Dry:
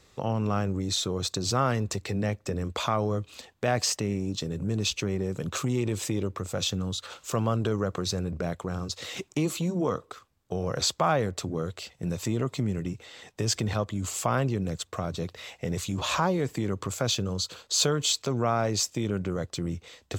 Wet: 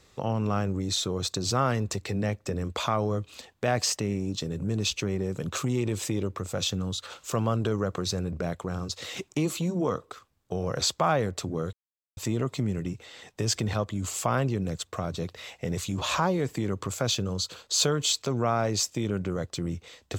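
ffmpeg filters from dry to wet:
-filter_complex "[0:a]asplit=3[a][b][c];[a]atrim=end=11.73,asetpts=PTS-STARTPTS,afade=t=out:st=11.726:d=0.004:c=hsin[d];[b]atrim=start=11.73:end=12.17,asetpts=PTS-STARTPTS,volume=0[e];[c]atrim=start=12.17,asetpts=PTS-STARTPTS,afade=t=in:d=0.004:c=hsin[f];[d][e][f]concat=n=3:v=0:a=1"

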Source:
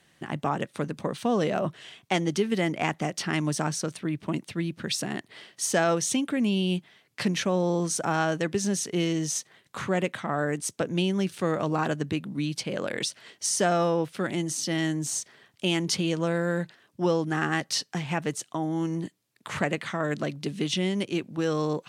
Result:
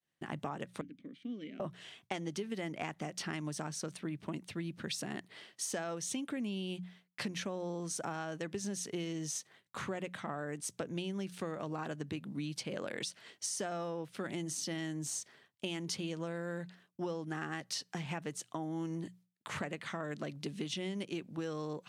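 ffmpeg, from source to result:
-filter_complex "[0:a]asettb=1/sr,asplit=3[a][b][c];[a]atrim=end=0.814[d];[b]atrim=start=0.81:end=1.6,asetpts=PTS-STARTPTS,afade=t=in:d=0.004:c=qsin,afade=t=out:st=0.786:d=0.004:c=qsin,asplit=3[e][f][g];[e]bandpass=f=270:t=q:w=8,volume=0dB[h];[f]bandpass=f=2.29k:t=q:w=8,volume=-6dB[i];[g]bandpass=f=3.01k:t=q:w=8,volume=-9dB[j];[h][i][j]amix=inputs=3:normalize=0[k];[c]atrim=start=1.596[l];[d][k]acrossfade=d=0.004:c1=hsin:c2=qsin[m];[m][l]acrossfade=d=0.004:c1=qsin:c2=hsin,agate=range=-33dB:threshold=-50dB:ratio=3:detection=peak,bandreject=f=60:t=h:w=6,bandreject=f=120:t=h:w=6,bandreject=f=180:t=h:w=6,acompressor=threshold=-29dB:ratio=6,volume=-6dB"

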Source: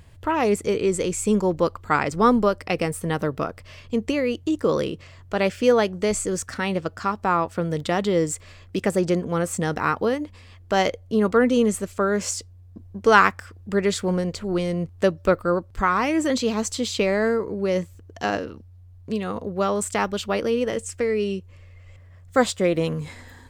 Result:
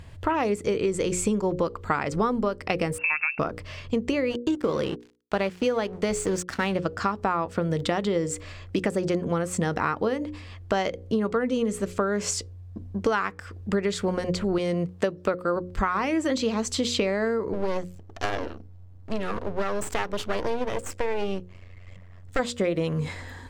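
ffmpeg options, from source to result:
-filter_complex "[0:a]asettb=1/sr,asplit=3[a][b][c];[a]atrim=end=2.984[d];[b]atrim=start=2.98:end=3.39,asetpts=PTS-STARTPTS,afade=t=in:d=0.004:c=qsin,afade=t=out:st=0.406:d=0.004:c=qsin,lowpass=f=2.4k:t=q:w=0.5098,lowpass=f=2.4k:t=q:w=0.6013,lowpass=f=2.4k:t=q:w=0.9,lowpass=f=2.4k:t=q:w=2.563,afreqshift=-2800[e];[c]atrim=start=3.386[f];[d][e]acrossfade=d=0.004:c1=hsin:c2=qsin[g];[g][f]acrossfade=d=0.004:c1=qsin:c2=hsin,asplit=3[h][i][j];[h]afade=t=out:st=4.29:d=0.02[k];[i]aeval=exprs='sgn(val(0))*max(abs(val(0))-0.0112,0)':c=same,afade=t=in:st=4.29:d=0.02,afade=t=out:st=6.73:d=0.02[l];[j]afade=t=in:st=6.73:d=0.02[m];[k][l][m]amix=inputs=3:normalize=0,asettb=1/sr,asplit=3[n][o][p];[n]atrim=end=14.584[q];[o]atrim=start=14.58:end=15.56,asetpts=PTS-STARTPTS,afade=t=in:d=0.004:c=qsin,afade=t=out:st=0.976:d=0.004:c=qsin,highpass=f=180:p=1[r];[p]atrim=start=15.556[s];[q][r]acrossfade=d=0.004:c1=hsin:c2=qsin[t];[t][s]acrossfade=d=0.004:c1=qsin:c2=hsin,asplit=3[u][v][w];[u]afade=t=out:st=17.52:d=0.02[x];[v]aeval=exprs='max(val(0),0)':c=same,afade=t=in:st=17.52:d=0.02,afade=t=out:st=22.38:d=0.02[y];[w]afade=t=in:st=22.38:d=0.02[z];[x][y][z]amix=inputs=3:normalize=0,highshelf=f=8.7k:g=-10.5,bandreject=f=60:t=h:w=6,bandreject=f=120:t=h:w=6,bandreject=f=180:t=h:w=6,bandreject=f=240:t=h:w=6,bandreject=f=300:t=h:w=6,bandreject=f=360:t=h:w=6,bandreject=f=420:t=h:w=6,bandreject=f=480:t=h:w=6,bandreject=f=540:t=h:w=6,acompressor=threshold=-26dB:ratio=12,volume=5dB"

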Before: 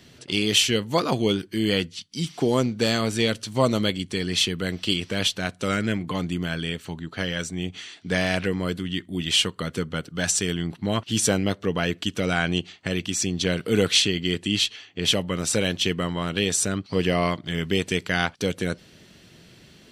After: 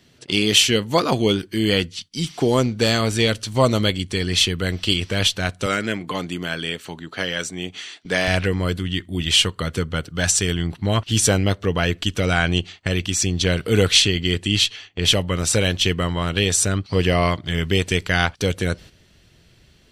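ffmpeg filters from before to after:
-filter_complex "[0:a]asettb=1/sr,asplit=3[a][b][c];[a]atrim=end=5.664[d];[b]atrim=start=5.66:end=8.28,asetpts=PTS-STARTPTS,afade=t=in:d=0.004:c=qsin,afade=t=out:st=2.616:d=0.004:c=qsin,highpass=220[e];[c]atrim=start=8.276[f];[d][e]acrossfade=d=0.004:c1=hsin:c2=qsin[g];[g][f]acrossfade=d=0.004:c1=qsin:c2=hsin,agate=range=-9dB:threshold=-44dB:ratio=16:detection=peak,asubboost=boost=5:cutoff=83,volume=4.5dB"

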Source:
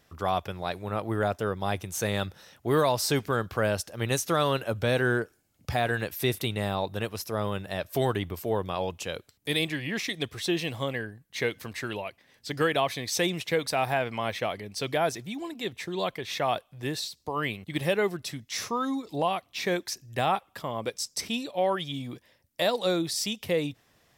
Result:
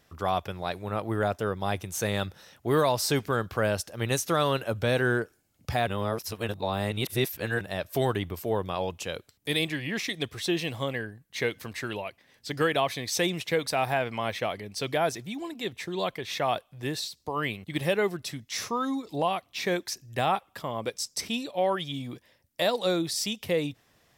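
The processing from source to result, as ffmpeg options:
-filter_complex "[0:a]asplit=3[a][b][c];[a]atrim=end=5.872[d];[b]atrim=start=5.868:end=7.612,asetpts=PTS-STARTPTS,areverse[e];[c]atrim=start=7.608[f];[d][e]acrossfade=d=0.004:c1=hsin:c2=hsin[g];[g][f]acrossfade=d=0.004:c1=hsin:c2=hsin"

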